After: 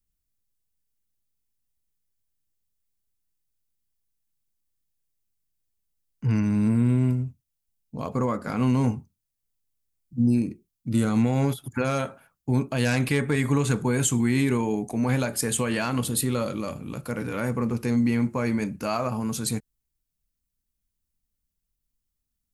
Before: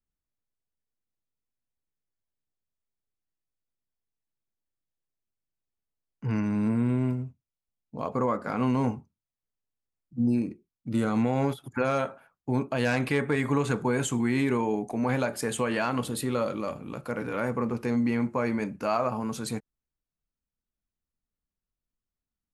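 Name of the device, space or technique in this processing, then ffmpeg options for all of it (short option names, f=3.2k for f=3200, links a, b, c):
smiley-face EQ: -af "lowshelf=f=130:g=6,equalizer=f=810:t=o:w=2.8:g=-6,highshelf=f=6.5k:g=9,volume=4dB"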